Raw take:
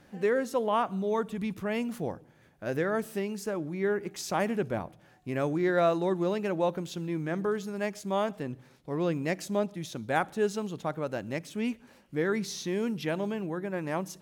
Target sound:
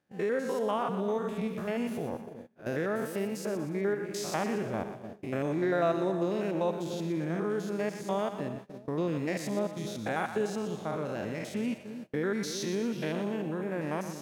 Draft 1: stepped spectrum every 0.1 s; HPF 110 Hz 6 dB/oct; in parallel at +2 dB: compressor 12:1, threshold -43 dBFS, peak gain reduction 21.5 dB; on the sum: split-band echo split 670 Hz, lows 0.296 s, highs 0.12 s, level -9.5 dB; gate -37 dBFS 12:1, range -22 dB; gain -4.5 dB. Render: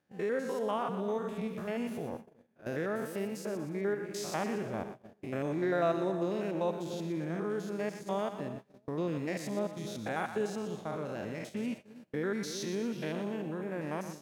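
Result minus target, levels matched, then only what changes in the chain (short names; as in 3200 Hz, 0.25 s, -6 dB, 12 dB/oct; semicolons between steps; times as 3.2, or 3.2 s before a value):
compressor: peak gain reduction +10 dB
change: compressor 12:1, threshold -32 dBFS, peak gain reduction 11.5 dB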